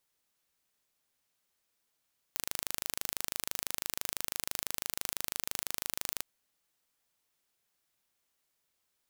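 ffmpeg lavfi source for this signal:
-f lavfi -i "aevalsrc='0.501*eq(mod(n,1696),0)':d=3.86:s=44100"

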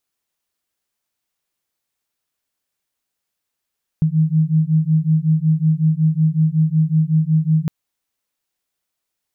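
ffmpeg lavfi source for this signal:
-f lavfi -i "aevalsrc='0.158*(sin(2*PI*155*t)+sin(2*PI*160.4*t))':d=3.66:s=44100"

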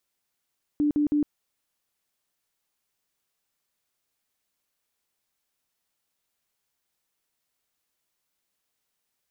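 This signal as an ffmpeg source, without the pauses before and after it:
-f lavfi -i "aevalsrc='0.106*sin(2*PI*295*mod(t,0.16))*lt(mod(t,0.16),32/295)':d=0.48:s=44100"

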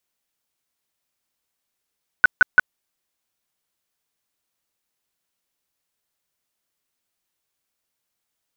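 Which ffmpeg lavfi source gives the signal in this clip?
-f lavfi -i "aevalsrc='0.473*sin(2*PI*1490*mod(t,0.17))*lt(mod(t,0.17),24/1490)':d=0.51:s=44100"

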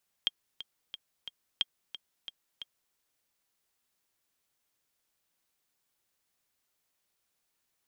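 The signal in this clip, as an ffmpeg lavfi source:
-f lavfi -i "aevalsrc='pow(10,(-14-13.5*gte(mod(t,4*60/179),60/179))/20)*sin(2*PI*3220*mod(t,60/179))*exp(-6.91*mod(t,60/179)/0.03)':d=2.68:s=44100"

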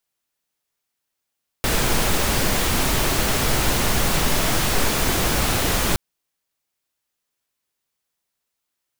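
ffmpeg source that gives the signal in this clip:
-f lavfi -i "anoisesrc=c=pink:a=0.543:d=4.32:r=44100:seed=1"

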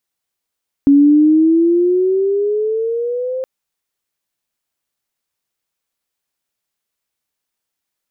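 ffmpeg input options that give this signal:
-f lavfi -i "aevalsrc='pow(10,(-5-13.5*t/2.57)/20)*sin(2*PI*278*2.57/(11*log(2)/12)*(exp(11*log(2)/12*t/2.57)-1))':d=2.57:s=44100"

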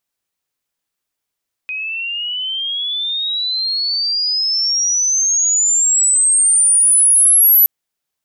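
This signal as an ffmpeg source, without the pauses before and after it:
-f lavfi -i "aevalsrc='pow(10,(-21+14.5*t/5.97)/20)*sin(2*PI*2500*5.97/log(12000/2500)*(exp(log(12000/2500)*t/5.97)-1))':d=5.97:s=44100"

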